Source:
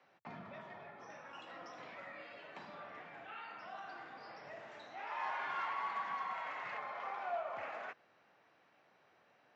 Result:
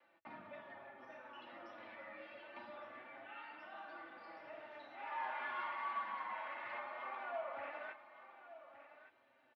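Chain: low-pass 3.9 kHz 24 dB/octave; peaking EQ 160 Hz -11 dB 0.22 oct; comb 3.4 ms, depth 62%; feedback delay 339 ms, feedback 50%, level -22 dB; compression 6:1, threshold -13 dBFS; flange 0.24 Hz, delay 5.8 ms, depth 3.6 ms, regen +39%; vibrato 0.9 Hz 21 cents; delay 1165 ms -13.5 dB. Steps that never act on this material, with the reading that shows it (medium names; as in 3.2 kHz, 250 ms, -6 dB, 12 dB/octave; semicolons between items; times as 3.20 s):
compression, threshold -13 dBFS: peak at its input -27.0 dBFS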